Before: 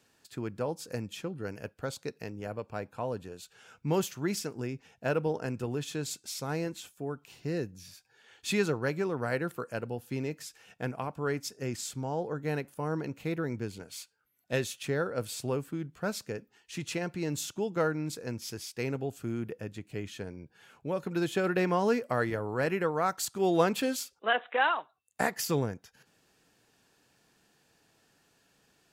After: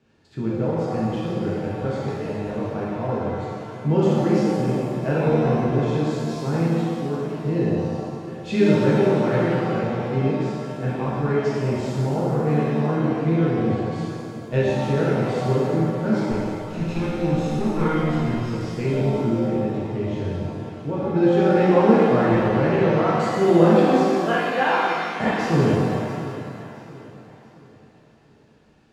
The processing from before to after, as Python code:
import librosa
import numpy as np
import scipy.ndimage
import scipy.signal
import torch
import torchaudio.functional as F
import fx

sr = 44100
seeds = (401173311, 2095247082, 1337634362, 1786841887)

p1 = fx.lower_of_two(x, sr, delay_ms=0.76, at=(16.31, 18.52))
p2 = scipy.signal.sosfilt(scipy.signal.butter(2, 4000.0, 'lowpass', fs=sr, output='sos'), p1)
p3 = fx.low_shelf(p2, sr, hz=470.0, db=11.5)
p4 = p3 + fx.echo_feedback(p3, sr, ms=677, feedback_pct=39, wet_db=-15.0, dry=0)
p5 = fx.rev_shimmer(p4, sr, seeds[0], rt60_s=2.0, semitones=7, shimmer_db=-8, drr_db=-7.5)
y = F.gain(torch.from_numpy(p5), -4.0).numpy()